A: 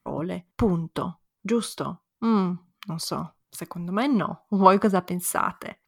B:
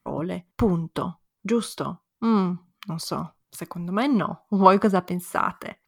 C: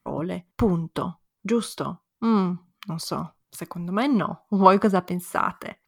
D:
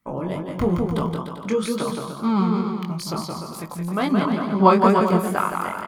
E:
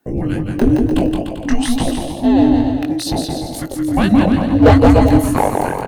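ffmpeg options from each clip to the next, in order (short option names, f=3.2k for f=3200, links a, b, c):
-af "deesser=0.6,volume=1dB"
-af anull
-filter_complex "[0:a]asplit=2[a][b];[b]aecho=0:1:170|297.5|393.1|464.8|518.6:0.631|0.398|0.251|0.158|0.1[c];[a][c]amix=inputs=2:normalize=0,flanger=delay=18.5:depth=5:speed=2.2,volume=3.5dB"
-af "afreqshift=-480,volume=12dB,asoftclip=hard,volume=-12dB,volume=8.5dB"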